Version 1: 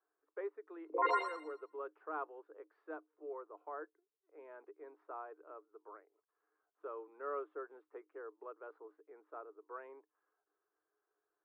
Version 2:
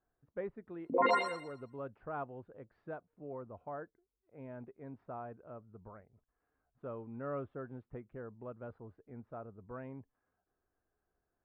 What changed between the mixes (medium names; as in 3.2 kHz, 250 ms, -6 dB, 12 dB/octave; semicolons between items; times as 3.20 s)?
speech -3.5 dB; master: remove rippled Chebyshev high-pass 300 Hz, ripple 9 dB